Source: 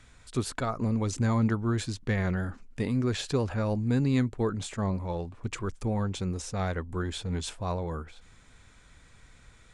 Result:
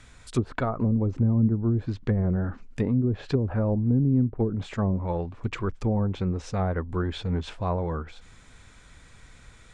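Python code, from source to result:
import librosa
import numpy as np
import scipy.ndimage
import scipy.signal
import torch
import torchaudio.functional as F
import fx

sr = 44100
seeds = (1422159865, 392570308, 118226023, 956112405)

y = fx.env_lowpass_down(x, sr, base_hz=320.0, full_db=-22.5)
y = y * 10.0 ** (4.5 / 20.0)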